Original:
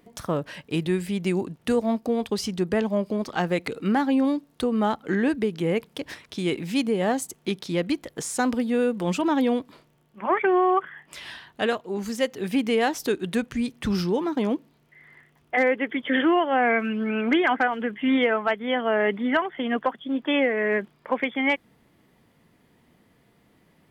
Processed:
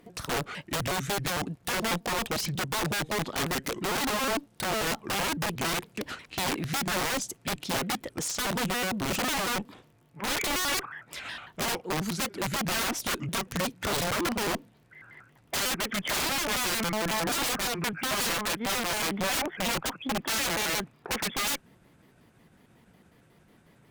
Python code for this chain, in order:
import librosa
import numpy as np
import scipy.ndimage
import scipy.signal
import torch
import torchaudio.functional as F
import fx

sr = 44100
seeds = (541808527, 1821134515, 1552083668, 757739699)

y = fx.pitch_trill(x, sr, semitones=-4.5, every_ms=91)
y = (np.mod(10.0 ** (23.5 / 20.0) * y + 1.0, 2.0) - 1.0) / 10.0 ** (23.5 / 20.0)
y = fx.cheby_harmonics(y, sr, harmonics=(5,), levels_db=(-26,), full_scale_db=-23.5)